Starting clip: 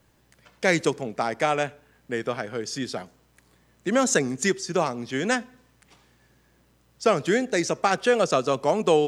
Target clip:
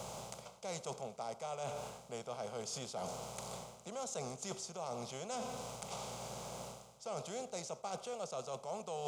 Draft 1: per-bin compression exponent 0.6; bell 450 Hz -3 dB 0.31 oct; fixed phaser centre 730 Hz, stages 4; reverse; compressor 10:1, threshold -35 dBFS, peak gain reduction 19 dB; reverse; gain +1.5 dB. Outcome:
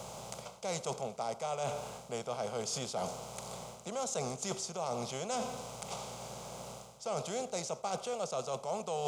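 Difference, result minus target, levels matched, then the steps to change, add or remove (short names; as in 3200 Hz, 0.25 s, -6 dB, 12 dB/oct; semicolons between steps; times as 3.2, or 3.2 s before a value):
compressor: peak gain reduction -6 dB
change: compressor 10:1, threshold -41.5 dBFS, peak gain reduction 25 dB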